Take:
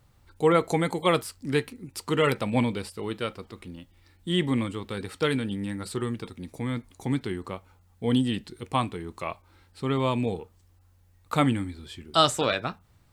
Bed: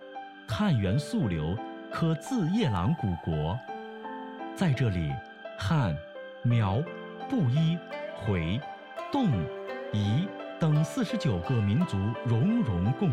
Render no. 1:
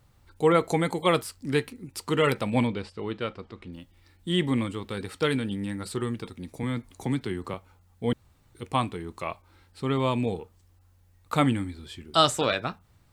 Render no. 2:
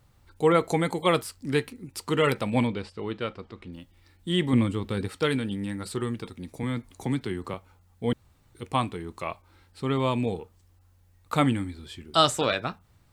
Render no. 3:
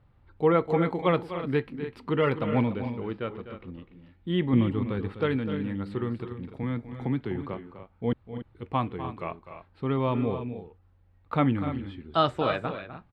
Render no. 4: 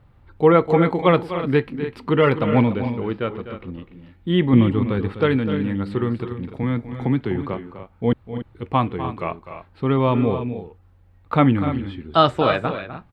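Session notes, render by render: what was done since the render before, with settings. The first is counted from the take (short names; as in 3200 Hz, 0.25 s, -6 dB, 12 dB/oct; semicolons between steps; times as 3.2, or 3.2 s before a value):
2.67–3.73 air absorption 120 m; 6.63–7.54 three-band squash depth 40%; 8.13–8.55 room tone
4.53–5.08 low shelf 350 Hz +7.5 dB
air absorption 430 m; loudspeakers at several distances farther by 86 m -12 dB, 100 m -12 dB
gain +8 dB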